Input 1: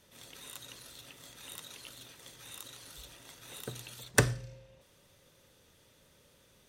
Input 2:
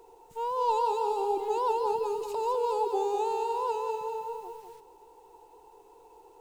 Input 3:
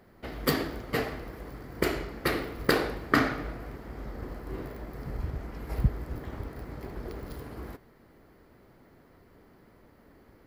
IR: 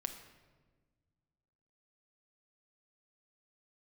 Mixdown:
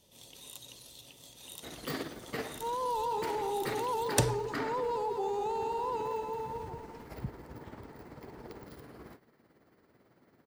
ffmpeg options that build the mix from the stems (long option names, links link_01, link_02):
-filter_complex "[0:a]firequalizer=gain_entry='entry(920,0);entry(1400,-14);entry(3000,1)':delay=0.05:min_phase=1,volume=-1.5dB[link_01];[1:a]adelay=2250,volume=-3dB[link_02];[2:a]highpass=110,highshelf=frequency=6900:gain=7.5,tremolo=f=18:d=0.52,adelay=1400,volume=-4.5dB[link_03];[link_02][link_03]amix=inputs=2:normalize=0,equalizer=frequency=14000:width=0.77:gain=-10.5,alimiter=level_in=2dB:limit=-24dB:level=0:latency=1:release=14,volume=-2dB,volume=0dB[link_04];[link_01][link_04]amix=inputs=2:normalize=0"